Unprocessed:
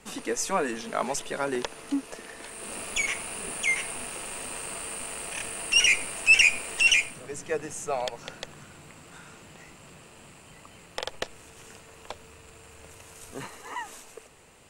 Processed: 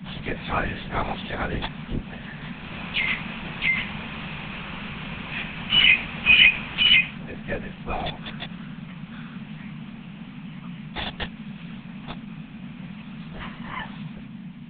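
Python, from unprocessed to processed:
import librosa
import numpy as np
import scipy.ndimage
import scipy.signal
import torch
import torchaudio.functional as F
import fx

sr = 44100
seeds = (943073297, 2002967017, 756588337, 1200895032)

y = fx.freq_snap(x, sr, grid_st=3)
y = fx.lpc_vocoder(y, sr, seeds[0], excitation='whisper', order=8)
y = fx.dmg_noise_band(y, sr, seeds[1], low_hz=140.0, high_hz=240.0, level_db=-38.0)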